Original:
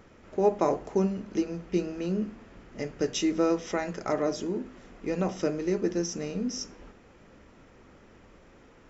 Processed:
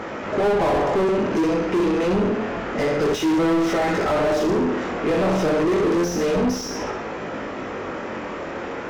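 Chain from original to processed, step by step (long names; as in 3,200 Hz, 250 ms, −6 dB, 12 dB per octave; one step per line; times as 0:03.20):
flutter between parallel walls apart 10.9 metres, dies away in 0.57 s
chorus effect 0.28 Hz, delay 18.5 ms, depth 7.4 ms
mid-hump overdrive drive 40 dB, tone 1,100 Hz, clips at −13.5 dBFS
level +1.5 dB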